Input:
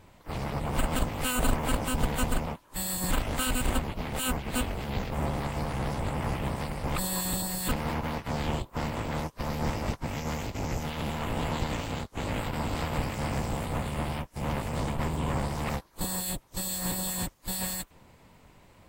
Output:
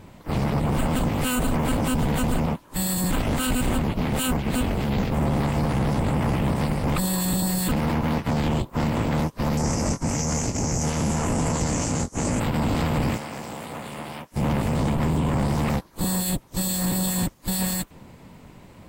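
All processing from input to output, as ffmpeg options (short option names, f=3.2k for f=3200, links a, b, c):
-filter_complex "[0:a]asettb=1/sr,asplit=3[a][b][c];[a]atrim=end=9.574[d];[b]atrim=start=9.57:end=12.4,asetpts=PTS-STARTPTS,afade=t=in:d=0.004:c=qsin,afade=t=out:st=2.826:d=0.004:c=qsin,lowpass=f=10k:w=0.5412,lowpass=f=10k:w=1.3066,highshelf=f=4.8k:t=q:w=3:g=9,asplit=2[e][f];[f]adelay=24,volume=-9dB[g];[e][g]amix=inputs=2:normalize=0,atrim=end_sample=124803[h];[c]atrim=start=12.396[i];[d][h]acrossfade=d=0.004:c1=hsin:c2=qsin[j];[j][i]acrossfade=d=0.004:c1=qsin:c2=hsin,asettb=1/sr,asplit=3[k][l][m];[k]atrim=end=13.174[n];[l]atrim=start=13.17:end=14.32,asetpts=PTS-STARTPTS,afade=t=in:d=0.004:c=qsin,afade=t=out:st=1.146:d=0.004:c=qsin,highpass=f=620:p=1,acompressor=threshold=-43dB:ratio=2:attack=3.2:release=140:knee=1:detection=peak[o];[m]atrim=start=14.316[p];[n][o]acrossfade=d=0.004:c1=hsin:c2=qsin[q];[q][p]acrossfade=d=0.004:c1=qsin:c2=hsin,equalizer=f=200:t=o:w=2:g=7.5,alimiter=limit=-21.5dB:level=0:latency=1:release=12,volume=6dB"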